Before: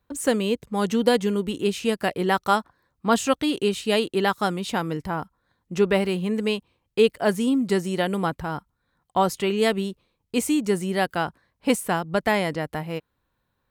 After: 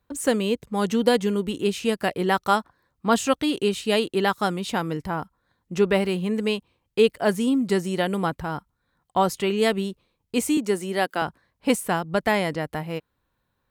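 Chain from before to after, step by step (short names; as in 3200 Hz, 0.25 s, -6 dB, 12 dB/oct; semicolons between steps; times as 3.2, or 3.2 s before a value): 10.57–11.22 HPF 210 Hz 24 dB/oct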